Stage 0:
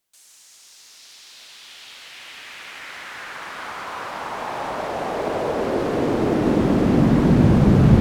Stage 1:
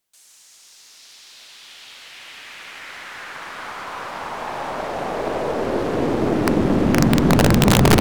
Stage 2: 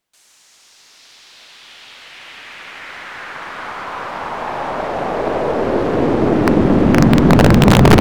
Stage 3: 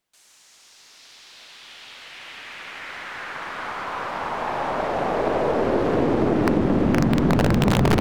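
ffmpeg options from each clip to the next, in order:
ffmpeg -i in.wav -af "aeval=exprs='0.708*(cos(1*acos(clip(val(0)/0.708,-1,1)))-cos(1*PI/2))+0.0398*(cos(8*acos(clip(val(0)/0.708,-1,1)))-cos(8*PI/2))':channel_layout=same,aeval=exprs='(mod(2.11*val(0)+1,2)-1)/2.11':channel_layout=same" out.wav
ffmpeg -i in.wav -af "highshelf=frequency=4700:gain=-11,volume=5.5dB" out.wav
ffmpeg -i in.wav -af "acompressor=threshold=-12dB:ratio=6,volume=-3dB" out.wav

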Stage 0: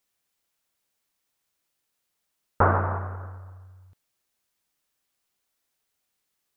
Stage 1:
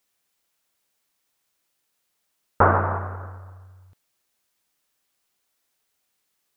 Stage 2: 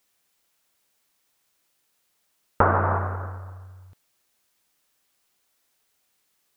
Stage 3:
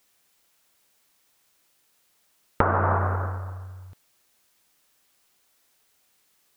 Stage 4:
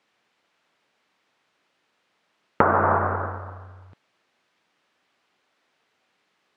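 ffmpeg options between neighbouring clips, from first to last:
ffmpeg -i in.wav -af "lowshelf=frequency=140:gain=-4.5,volume=4dB" out.wav
ffmpeg -i in.wav -af "acompressor=threshold=-20dB:ratio=3,volume=3.5dB" out.wav
ffmpeg -i in.wav -af "acompressor=threshold=-22dB:ratio=6,volume=4.5dB" out.wav
ffmpeg -i in.wav -af "highpass=150,lowpass=2800,volume=4dB" out.wav

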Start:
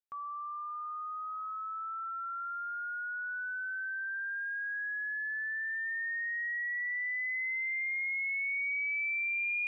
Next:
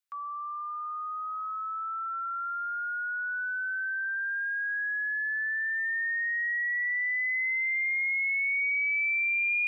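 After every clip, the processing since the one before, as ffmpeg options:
ffmpeg -i in.wav -af "highpass=frequency=1100:width=0.5412,highpass=frequency=1100:width=1.3066,volume=5.5dB" out.wav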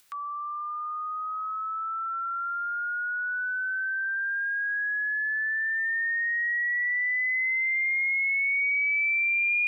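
ffmpeg -i in.wav -af "acompressor=mode=upward:threshold=-45dB:ratio=2.5,volume=2.5dB" out.wav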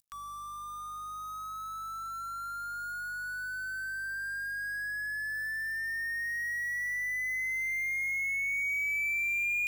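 ffmpeg -i in.wav -af "aeval=exprs='val(0)+0.00126*(sin(2*PI*50*n/s)+sin(2*PI*2*50*n/s)/2+sin(2*PI*3*50*n/s)/3+sin(2*PI*4*50*n/s)/4+sin(2*PI*5*50*n/s)/5)':channel_layout=same,aeval=exprs='sgn(val(0))*max(abs(val(0))-0.00316,0)':channel_layout=same,bass=frequency=250:gain=7,treble=frequency=4000:gain=13,volume=-7dB" out.wav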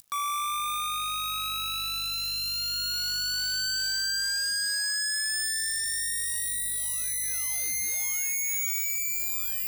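ffmpeg -i in.wav -af "aeval=exprs='0.0708*sin(PI/2*10*val(0)/0.0708)':channel_layout=same,volume=-3.5dB" out.wav

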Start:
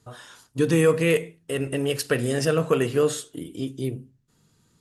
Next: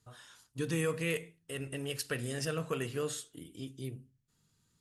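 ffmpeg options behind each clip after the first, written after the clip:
ffmpeg -i in.wav -af "equalizer=frequency=440:width_type=o:width=2.9:gain=-7,volume=-8dB" out.wav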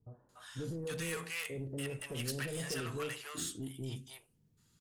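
ffmpeg -i in.wav -filter_complex "[0:a]acrossover=split=690[link_01][link_02];[link_01]alimiter=level_in=9dB:limit=-24dB:level=0:latency=1,volume=-9dB[link_03];[link_03][link_02]amix=inputs=2:normalize=0,asoftclip=type=tanh:threshold=-36.5dB,acrossover=split=700[link_04][link_05];[link_05]adelay=290[link_06];[link_04][link_06]amix=inputs=2:normalize=0,volume=3.5dB" out.wav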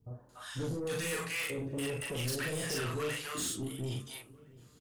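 ffmpeg -i in.wav -filter_complex "[0:a]asplit=2[link_01][link_02];[link_02]adelay=40,volume=-2dB[link_03];[link_01][link_03]amix=inputs=2:normalize=0,asplit=2[link_04][link_05];[link_05]adelay=679,lowpass=frequency=1600:poles=1,volume=-22.5dB,asplit=2[link_06][link_07];[link_07]adelay=679,lowpass=frequency=1600:poles=1,volume=0.49,asplit=2[link_08][link_09];[link_09]adelay=679,lowpass=frequency=1600:poles=1,volume=0.49[link_10];[link_04][link_06][link_08][link_10]amix=inputs=4:normalize=0,asoftclip=type=tanh:threshold=-35dB,volume=5dB" out.wav

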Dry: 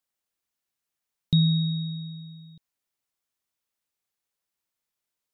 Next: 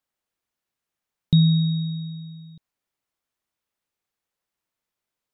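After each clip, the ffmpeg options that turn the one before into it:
ffmpeg -i in.wav -af "highshelf=frequency=3300:gain=-8,volume=4.5dB" out.wav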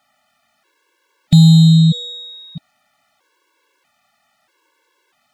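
ffmpeg -i in.wav -filter_complex "[0:a]asplit=2[link_01][link_02];[link_02]highpass=frequency=720:poles=1,volume=29dB,asoftclip=type=tanh:threshold=-8dB[link_03];[link_01][link_03]amix=inputs=2:normalize=0,lowpass=frequency=1700:poles=1,volume=-6dB,acontrast=76,afftfilt=real='re*gt(sin(2*PI*0.78*pts/sr)*(1-2*mod(floor(b*sr/1024/290),2)),0)':imag='im*gt(sin(2*PI*0.78*pts/sr)*(1-2*mod(floor(b*sr/1024/290),2)),0)':win_size=1024:overlap=0.75,volume=3.5dB" out.wav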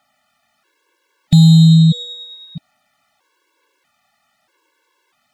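ffmpeg -i in.wav -af "aphaser=in_gain=1:out_gain=1:delay=1.2:decay=0.21:speed=1.1:type=triangular,volume=-1dB" out.wav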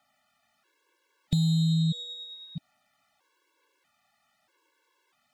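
ffmpeg -i in.wav -filter_complex "[0:a]acrossover=split=430|2400[link_01][link_02][link_03];[link_01]acompressor=threshold=-17dB:ratio=4[link_04];[link_02]acompressor=threshold=-54dB:ratio=4[link_05];[link_03]acompressor=threshold=-29dB:ratio=4[link_06];[link_04][link_05][link_06]amix=inputs=3:normalize=0,volume=-7.5dB" out.wav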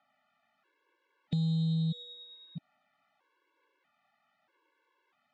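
ffmpeg -i in.wav -filter_complex "[0:a]highpass=150,lowpass=2700,asplit=2[link_01][link_02];[link_02]asoftclip=type=tanh:threshold=-29dB,volume=-8dB[link_03];[link_01][link_03]amix=inputs=2:normalize=0,volume=-4.5dB" out.wav

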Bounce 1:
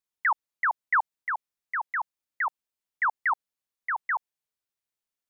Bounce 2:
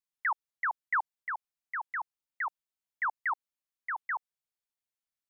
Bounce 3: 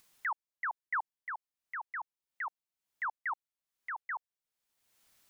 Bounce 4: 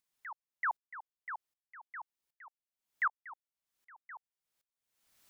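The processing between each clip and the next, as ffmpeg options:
ffmpeg -i in.wav -af "equalizer=frequency=410:width=1.5:gain=-4.5,volume=-5.5dB" out.wav
ffmpeg -i in.wav -af "acompressor=mode=upward:threshold=-41dB:ratio=2.5,volume=-4.5dB" out.wav
ffmpeg -i in.wav -af "aeval=exprs='val(0)*pow(10,-27*if(lt(mod(-1.3*n/s,1),2*abs(-1.3)/1000),1-mod(-1.3*n/s,1)/(2*abs(-1.3)/1000),(mod(-1.3*n/s,1)-2*abs(-1.3)/1000)/(1-2*abs(-1.3)/1000))/20)':channel_layout=same,volume=6dB" out.wav

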